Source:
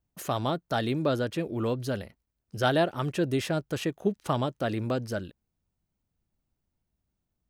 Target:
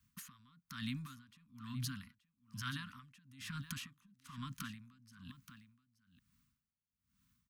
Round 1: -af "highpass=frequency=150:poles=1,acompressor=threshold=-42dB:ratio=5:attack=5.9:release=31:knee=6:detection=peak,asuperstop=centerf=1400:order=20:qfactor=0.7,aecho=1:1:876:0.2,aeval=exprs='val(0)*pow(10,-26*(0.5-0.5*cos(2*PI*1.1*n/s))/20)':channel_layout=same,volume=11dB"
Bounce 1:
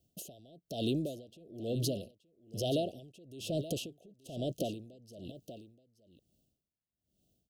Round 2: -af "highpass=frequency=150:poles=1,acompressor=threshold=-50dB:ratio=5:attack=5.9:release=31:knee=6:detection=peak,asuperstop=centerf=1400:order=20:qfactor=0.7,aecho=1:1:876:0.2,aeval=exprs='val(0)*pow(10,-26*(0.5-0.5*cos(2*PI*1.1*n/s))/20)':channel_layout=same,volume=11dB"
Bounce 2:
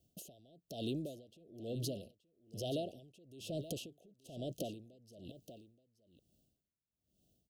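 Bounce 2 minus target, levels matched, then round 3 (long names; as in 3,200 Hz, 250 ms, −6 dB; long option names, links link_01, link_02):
1,000 Hz band −4.5 dB
-af "highpass=frequency=150:poles=1,acompressor=threshold=-50dB:ratio=5:attack=5.9:release=31:knee=6:detection=peak,asuperstop=centerf=520:order=20:qfactor=0.7,aecho=1:1:876:0.2,aeval=exprs='val(0)*pow(10,-26*(0.5-0.5*cos(2*PI*1.1*n/s))/20)':channel_layout=same,volume=11dB"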